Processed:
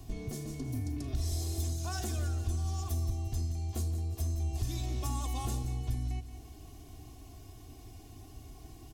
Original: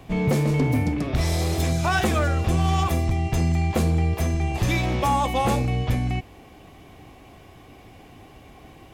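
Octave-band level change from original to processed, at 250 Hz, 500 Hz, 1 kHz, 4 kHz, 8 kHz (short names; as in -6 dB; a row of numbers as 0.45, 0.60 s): -16.5, -19.5, -20.0, -13.0, -6.5 dB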